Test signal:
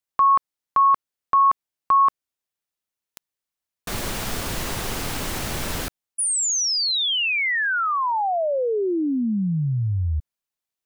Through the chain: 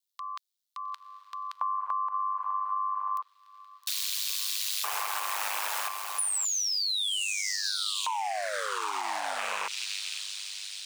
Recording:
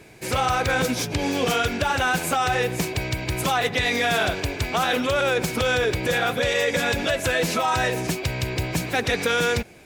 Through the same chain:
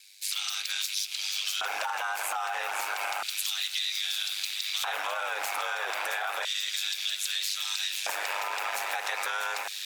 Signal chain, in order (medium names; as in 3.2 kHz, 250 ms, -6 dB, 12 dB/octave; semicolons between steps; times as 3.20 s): rattle on loud lows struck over -33 dBFS, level -22 dBFS; echo that smears into a reverb 898 ms, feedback 63%, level -9.5 dB; dynamic bell 1.3 kHz, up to +4 dB, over -35 dBFS, Q 0.83; ring modulator 50 Hz; treble shelf 7.1 kHz +7 dB; LFO high-pass square 0.31 Hz 830–3900 Hz; peak limiter -15 dBFS; compression, threshold -27 dBFS; high-pass 570 Hz 6 dB/octave